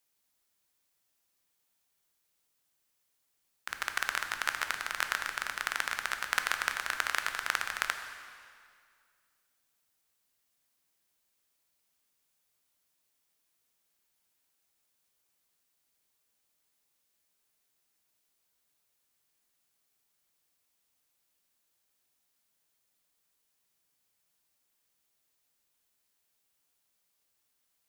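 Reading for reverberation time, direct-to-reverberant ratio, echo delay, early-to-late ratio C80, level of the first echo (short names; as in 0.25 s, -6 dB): 2.1 s, 6.0 dB, none, 8.5 dB, none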